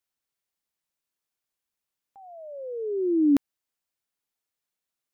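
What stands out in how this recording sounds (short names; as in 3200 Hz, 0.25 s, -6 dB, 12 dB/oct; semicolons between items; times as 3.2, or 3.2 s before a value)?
noise floor -87 dBFS; spectral tilt -2.0 dB/oct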